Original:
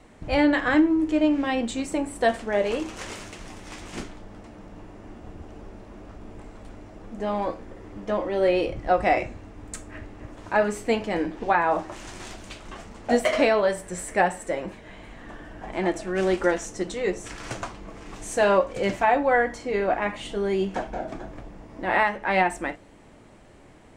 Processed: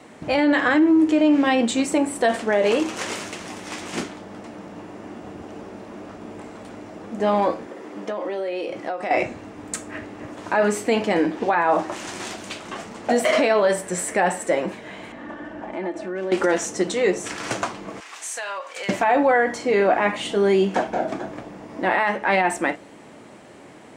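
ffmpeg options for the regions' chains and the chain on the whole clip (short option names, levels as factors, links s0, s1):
-filter_complex "[0:a]asettb=1/sr,asplit=3[s0][s1][s2];[s0]atrim=end=7.664[s3];[s1]atrim=start=7.66:end=9.11,asetpts=PTS-STARTPTS,afade=t=in:d=0.004:c=qsin,afade=t=out:st=1.446:d=0.004:c=qsin,highpass=240,acompressor=threshold=0.0282:ratio=16:attack=3.2:release=140:knee=1:detection=peak[s4];[s2]atrim=start=9.106[s5];[s3][s4]acrossfade=d=0.004:c1=hsin:c2=qsin[s6];[s6][s5]acrossfade=d=0.004:c1=qsin:c2=hsin,asettb=1/sr,asplit=3[s7][s8][s9];[s7]atrim=end=15.124[s10];[s8]atrim=start=15.12:end=16.32,asetpts=PTS-STARTPTS,afade=t=in:d=0.004:c=qsin,afade=t=out:st=1.196:d=0.004:c=qsin,aecho=1:1:3.4:0.44,atrim=end_sample=52920,acompressor=threshold=0.0178:ratio=3:attack=3.2:release=140:knee=1:detection=peak,lowpass=f=1700:p=1[s11];[s9]atrim=start=16.316[s12];[s10][s11]acrossfade=d=0.004:c1=hsin:c2=qsin[s13];[s13][s12]acrossfade=d=0.004:c1=qsin:c2=hsin,asettb=1/sr,asplit=3[s14][s15][s16];[s14]atrim=end=18.004[s17];[s15]atrim=start=18:end=18.89,asetpts=PTS-STARTPTS,afade=t=in:d=0.004:c=qsin,afade=t=out:st=0.886:d=0.004:c=qsin,highpass=1200,acompressor=threshold=0.0178:ratio=6:attack=3.2:release=140:knee=1:detection=peak[s18];[s16]atrim=start=18.886[s19];[s17][s18]acrossfade=d=0.004:c1=hsin:c2=qsin[s20];[s20][s19]acrossfade=d=0.004:c1=qsin:c2=hsin,alimiter=limit=0.126:level=0:latency=1:release=35,highpass=170,volume=2.51"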